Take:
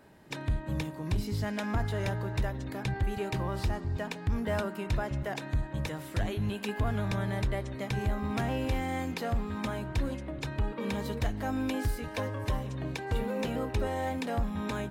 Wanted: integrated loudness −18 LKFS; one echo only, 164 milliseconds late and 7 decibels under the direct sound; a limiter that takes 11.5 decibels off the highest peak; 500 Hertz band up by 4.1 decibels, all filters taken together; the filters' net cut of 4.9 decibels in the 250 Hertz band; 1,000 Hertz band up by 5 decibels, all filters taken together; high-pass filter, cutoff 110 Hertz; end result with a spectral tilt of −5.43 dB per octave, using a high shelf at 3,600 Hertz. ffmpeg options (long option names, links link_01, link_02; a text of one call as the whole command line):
ffmpeg -i in.wav -af "highpass=110,equalizer=frequency=250:width_type=o:gain=-7.5,equalizer=frequency=500:width_type=o:gain=5.5,equalizer=frequency=1000:width_type=o:gain=5.5,highshelf=frequency=3600:gain=-6,alimiter=level_in=5dB:limit=-24dB:level=0:latency=1,volume=-5dB,aecho=1:1:164:0.447,volume=19.5dB" out.wav